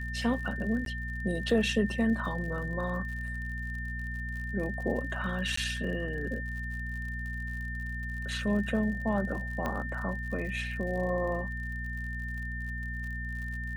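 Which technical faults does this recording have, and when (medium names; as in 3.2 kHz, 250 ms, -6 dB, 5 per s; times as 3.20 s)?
crackle 61 per s -40 dBFS
hum 60 Hz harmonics 4 -37 dBFS
whine 1.8 kHz -38 dBFS
0.85–0.86 s: dropout 12 ms
5.56–5.57 s: dropout 14 ms
9.66 s: pop -19 dBFS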